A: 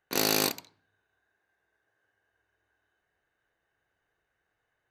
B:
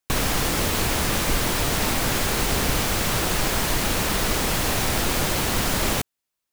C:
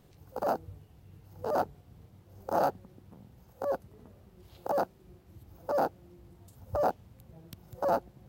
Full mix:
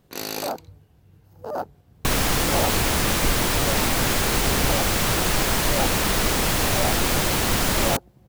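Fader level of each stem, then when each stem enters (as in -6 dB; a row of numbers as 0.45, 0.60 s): -5.0, +1.5, 0.0 dB; 0.00, 1.95, 0.00 s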